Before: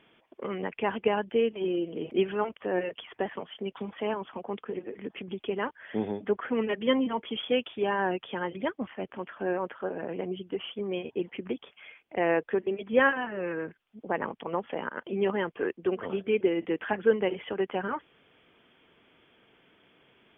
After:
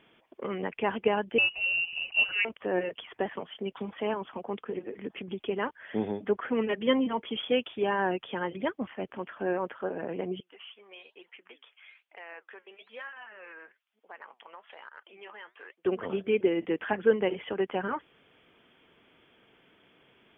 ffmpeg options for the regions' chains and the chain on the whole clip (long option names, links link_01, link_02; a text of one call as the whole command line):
ffmpeg -i in.wav -filter_complex "[0:a]asettb=1/sr,asplit=3[link_01][link_02][link_03];[link_01]atrim=end=1.384[link_04];[link_02]atrim=start=1.38:end=2.45,asetpts=PTS-STARTPTS,afade=type=in:duration=0.004:curve=qsin,afade=type=out:start_time=1.066:duration=0.004:curve=qsin,acrusher=bits=6:mode=log:mix=0:aa=0.000001,lowpass=frequency=2600:width_type=q:width=0.5098,lowpass=frequency=2600:width_type=q:width=0.6013,lowpass=frequency=2600:width_type=q:width=0.9,lowpass=frequency=2600:width_type=q:width=2.563,afreqshift=-3100[link_05];[link_03]atrim=start=2.446[link_06];[link_04][link_05]acrossfade=duration=0.004:curve1=hsin:curve2=qsin[link_07];[link_07][link_06]acrossfade=duration=0.004:curve1=qsin:curve2=hsin,asettb=1/sr,asplit=3[link_08][link_09][link_10];[link_08]atrim=end=10.404[link_11];[link_09]atrim=start=10.4:end=15.85,asetpts=PTS-STARTPTS,afade=type=in:duration=0.004:curve=qsin,afade=type=out:start_time=5.446:duration=0.004:curve=qsin,highpass=1100,acompressor=threshold=-39dB:ratio=2.5:attack=3.2:release=140:knee=1:detection=peak,flanger=delay=2.1:depth=7.3:regen=78:speed=1.1:shape=sinusoidal[link_12];[link_10]atrim=start=15.846[link_13];[link_11][link_12]acrossfade=duration=0.004:curve1=hsin:curve2=qsin[link_14];[link_14][link_13]acrossfade=duration=0.004:curve1=qsin:curve2=hsin" out.wav